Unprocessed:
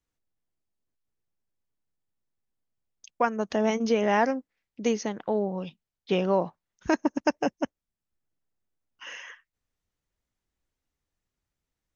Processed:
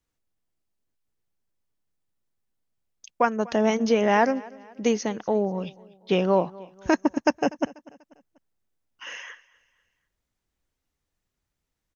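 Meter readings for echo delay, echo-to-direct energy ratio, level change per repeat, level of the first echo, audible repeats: 244 ms, −21.0 dB, −7.5 dB, −22.0 dB, 2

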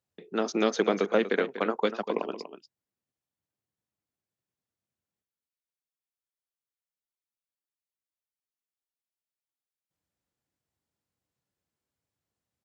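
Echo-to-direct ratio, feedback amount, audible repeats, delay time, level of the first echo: −11.5 dB, repeats not evenly spaced, 1, 242 ms, −11.5 dB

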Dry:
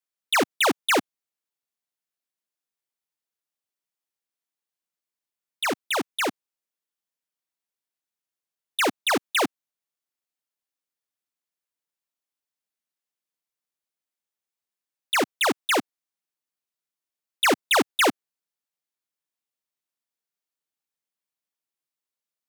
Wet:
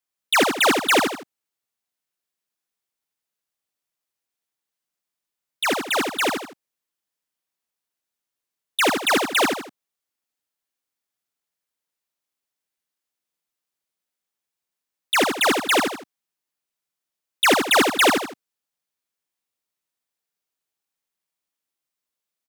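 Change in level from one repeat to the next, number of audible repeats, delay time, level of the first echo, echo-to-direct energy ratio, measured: −8.5 dB, 3, 79 ms, −5.0 dB, −4.5 dB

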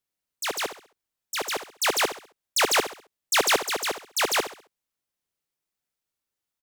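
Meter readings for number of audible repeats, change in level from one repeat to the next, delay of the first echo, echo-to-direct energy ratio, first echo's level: 3, −9.0 dB, 67 ms, −11.0 dB, −11.5 dB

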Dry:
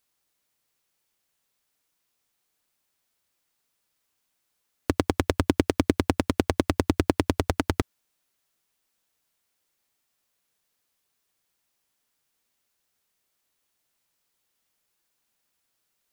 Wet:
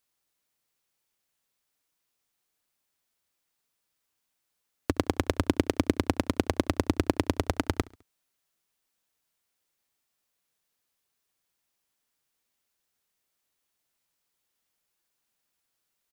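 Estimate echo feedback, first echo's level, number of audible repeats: 50%, −23.0 dB, 2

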